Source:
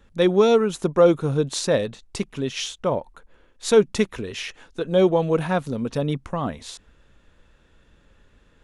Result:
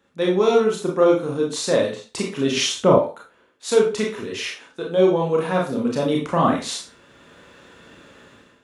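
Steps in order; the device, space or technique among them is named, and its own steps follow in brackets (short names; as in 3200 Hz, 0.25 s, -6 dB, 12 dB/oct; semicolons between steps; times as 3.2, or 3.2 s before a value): far laptop microphone (reverb RT60 0.30 s, pre-delay 26 ms, DRR -1.5 dB; HPF 180 Hz 12 dB/oct; AGC gain up to 16 dB); 2.57–2.98 low shelf 330 Hz +10 dB; gain -4.5 dB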